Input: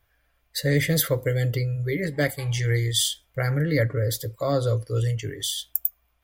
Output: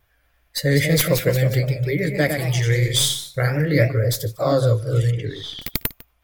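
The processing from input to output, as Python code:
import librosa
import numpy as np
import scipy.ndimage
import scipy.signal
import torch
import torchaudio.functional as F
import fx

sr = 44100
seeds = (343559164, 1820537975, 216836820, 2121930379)

p1 = fx.tracing_dist(x, sr, depth_ms=0.041)
p2 = (np.mod(10.0 ** (8.5 / 20.0) * p1 + 1.0, 2.0) - 1.0) / 10.0 ** (8.5 / 20.0)
p3 = p1 + F.gain(torch.from_numpy(p2), -11.0).numpy()
p4 = fx.echo_pitch(p3, sr, ms=231, semitones=1, count=3, db_per_echo=-6.0)
p5 = fx.air_absorb(p4, sr, metres=300.0, at=(5.1, 5.61), fade=0.02)
p6 = p5 + fx.echo_single(p5, sr, ms=150, db=-20.0, dry=0)
p7 = fx.vibrato(p6, sr, rate_hz=3.7, depth_cents=40.0)
y = F.gain(torch.from_numpy(p7), 1.5).numpy()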